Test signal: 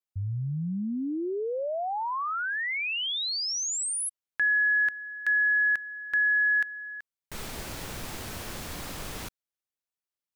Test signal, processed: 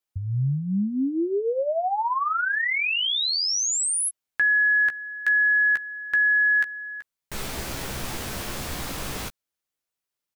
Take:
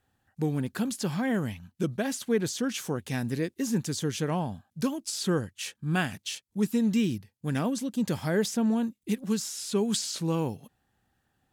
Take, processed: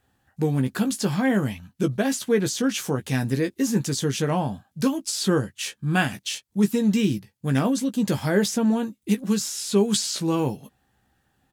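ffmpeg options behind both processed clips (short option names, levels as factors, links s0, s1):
-filter_complex "[0:a]asplit=2[s0][s1];[s1]adelay=15,volume=0.447[s2];[s0][s2]amix=inputs=2:normalize=0,volume=1.78"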